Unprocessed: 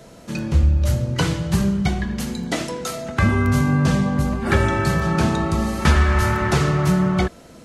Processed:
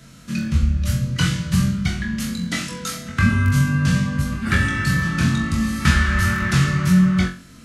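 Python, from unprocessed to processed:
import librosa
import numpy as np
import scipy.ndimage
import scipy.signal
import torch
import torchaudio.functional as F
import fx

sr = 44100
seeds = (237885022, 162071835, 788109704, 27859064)

y = fx.band_shelf(x, sr, hz=580.0, db=-14.5, octaves=1.7)
y = fx.room_flutter(y, sr, wall_m=3.8, rt60_s=0.32)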